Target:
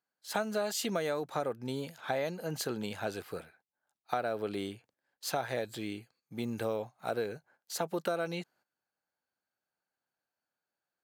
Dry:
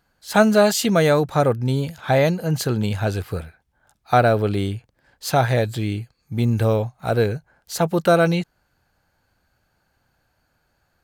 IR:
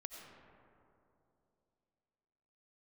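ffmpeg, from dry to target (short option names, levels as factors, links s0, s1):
-af "agate=range=0.224:threshold=0.00355:ratio=16:detection=peak,highpass=260,acompressor=threshold=0.1:ratio=6,volume=0.355"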